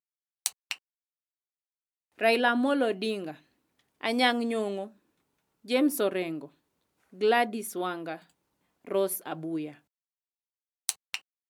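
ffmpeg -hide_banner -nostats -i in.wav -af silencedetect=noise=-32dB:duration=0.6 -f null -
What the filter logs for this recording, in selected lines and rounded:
silence_start: 0.73
silence_end: 2.21 | silence_duration: 1.48
silence_start: 3.31
silence_end: 4.03 | silence_duration: 0.72
silence_start: 4.84
silence_end: 5.70 | silence_duration: 0.85
silence_start: 6.45
silence_end: 7.21 | silence_duration: 0.77
silence_start: 8.16
silence_end: 8.88 | silence_duration: 0.72
silence_start: 9.69
silence_end: 10.89 | silence_duration: 1.20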